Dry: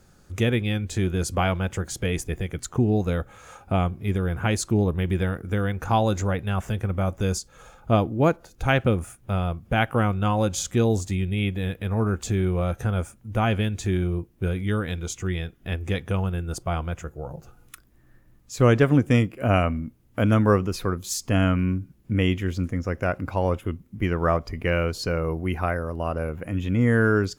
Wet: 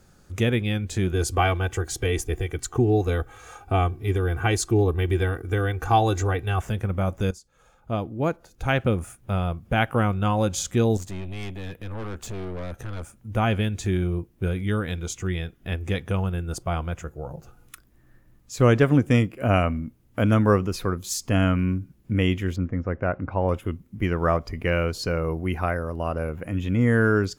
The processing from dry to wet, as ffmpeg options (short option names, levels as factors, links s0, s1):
-filter_complex "[0:a]asettb=1/sr,asplit=3[s0][s1][s2];[s0]atrim=end=1.124[s3];[s1]atrim=start=1.12:end=6.62,asetpts=PTS-STARTPTS,afade=t=in:d=0.004:c=qsin,afade=t=out:st=5.496:d=0.004:c=qsin,aecho=1:1:2.6:0.73,atrim=end_sample=242550[s4];[s2]atrim=start=6.616[s5];[s3][s4]acrossfade=d=0.004:c1=hsin:c2=qsin[s6];[s6][s5]acrossfade=d=0.004:c1=qsin:c2=hsin,asettb=1/sr,asplit=3[s7][s8][s9];[s7]atrim=end=10.974[s10];[s8]atrim=start=10.97:end=13.14,asetpts=PTS-STARTPTS,afade=t=in:d=0.004:c=qsin,afade=t=out:st=2.166:d=0.004:c=qsin,aeval=exprs='(tanh(35.5*val(0)+0.6)-tanh(0.6))/35.5':c=same[s11];[s9]atrim=start=13.136[s12];[s10][s11]acrossfade=d=0.004:c1=hsin:c2=qsin[s13];[s13][s12]acrossfade=d=0.004:c1=qsin:c2=hsin,asettb=1/sr,asplit=3[s14][s15][s16];[s14]atrim=end=22.564[s17];[s15]atrim=start=22.56:end=23.49,asetpts=PTS-STARTPTS,afade=t=in:d=0.004:c=qsin,afade=t=out:st=0.926:d=0.004:c=qsin,lowpass=1800[s18];[s16]atrim=start=23.486[s19];[s17][s18]acrossfade=d=0.004:c1=hsin:c2=qsin[s20];[s20][s19]acrossfade=d=0.004:c1=qsin:c2=hsin,asplit=2[s21][s22];[s21]atrim=end=7.31,asetpts=PTS-STARTPTS,afade=t=out:st=7.306:d=0.004:c=hsin:silence=0.133352[s23];[s22]atrim=start=7.31,asetpts=PTS-STARTPTS,afade=t=in:d=1.84:silence=0.133352[s24];[s23][s24]concat=n=2:v=0:a=1"